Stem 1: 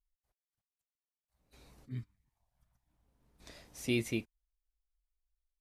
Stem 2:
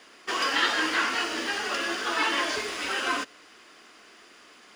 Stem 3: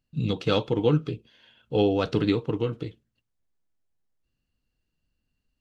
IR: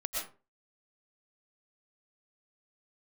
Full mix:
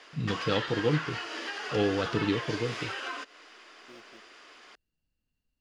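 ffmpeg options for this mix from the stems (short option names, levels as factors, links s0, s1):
-filter_complex "[0:a]acrusher=samples=15:mix=1:aa=0.000001,volume=0.133[s0];[1:a]volume=1.06[s1];[2:a]volume=0.562[s2];[s0][s1]amix=inputs=2:normalize=0,acrossover=split=280 6500:gain=0.141 1 0.2[s3][s4][s5];[s3][s4][s5]amix=inputs=3:normalize=0,acompressor=threshold=0.02:ratio=6,volume=1[s6];[s2][s6]amix=inputs=2:normalize=0"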